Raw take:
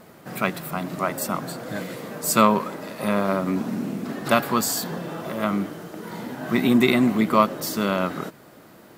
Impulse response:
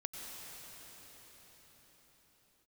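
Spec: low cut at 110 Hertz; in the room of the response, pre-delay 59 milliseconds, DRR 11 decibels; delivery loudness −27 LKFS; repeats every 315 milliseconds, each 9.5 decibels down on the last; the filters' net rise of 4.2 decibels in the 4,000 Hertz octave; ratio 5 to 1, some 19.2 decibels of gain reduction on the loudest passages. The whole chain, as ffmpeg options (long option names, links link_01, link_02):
-filter_complex "[0:a]highpass=110,equalizer=frequency=4000:width_type=o:gain=5,acompressor=threshold=-34dB:ratio=5,aecho=1:1:315|630|945|1260:0.335|0.111|0.0365|0.012,asplit=2[link_01][link_02];[1:a]atrim=start_sample=2205,adelay=59[link_03];[link_02][link_03]afir=irnorm=-1:irlink=0,volume=-11dB[link_04];[link_01][link_04]amix=inputs=2:normalize=0,volume=9dB"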